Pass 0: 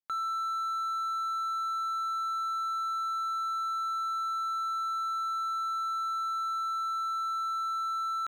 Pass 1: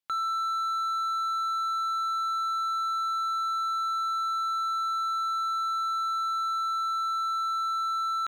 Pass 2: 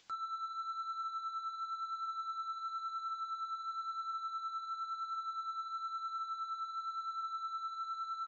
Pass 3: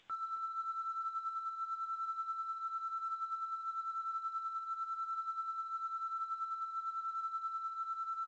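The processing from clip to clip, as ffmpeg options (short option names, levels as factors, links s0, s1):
-af "equalizer=f=3300:t=o:w=1.1:g=5,volume=1.33"
-af "acompressor=mode=upward:threshold=0.0224:ratio=2.5,aresample=16000,asoftclip=type=tanh:threshold=0.0282,aresample=44100,flanger=delay=8.8:depth=3.8:regen=31:speed=0.97:shape=triangular,volume=0.668"
-filter_complex "[0:a]asplit=2[s0][s1];[s1]adelay=270,lowpass=f=2100:p=1,volume=0.355,asplit=2[s2][s3];[s3]adelay=270,lowpass=f=2100:p=1,volume=0.48,asplit=2[s4][s5];[s5]adelay=270,lowpass=f=2100:p=1,volume=0.48,asplit=2[s6][s7];[s7]adelay=270,lowpass=f=2100:p=1,volume=0.48,asplit=2[s8][s9];[s9]adelay=270,lowpass=f=2100:p=1,volume=0.48[s10];[s2][s4][s6][s8][s10]amix=inputs=5:normalize=0[s11];[s0][s11]amix=inputs=2:normalize=0,aresample=8000,aresample=44100" -ar 16000 -c:a pcm_mulaw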